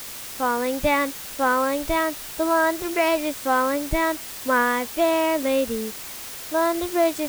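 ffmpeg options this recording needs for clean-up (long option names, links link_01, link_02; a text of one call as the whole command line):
ffmpeg -i in.wav -af "afwtdn=0.016" out.wav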